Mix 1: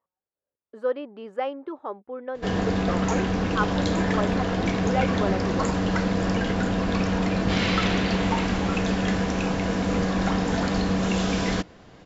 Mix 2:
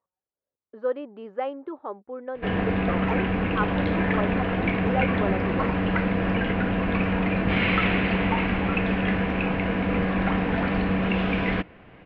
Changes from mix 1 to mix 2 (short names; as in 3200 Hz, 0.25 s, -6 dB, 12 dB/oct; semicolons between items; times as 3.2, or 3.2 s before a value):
background: add synth low-pass 2500 Hz, resonance Q 2.9; master: add air absorption 280 m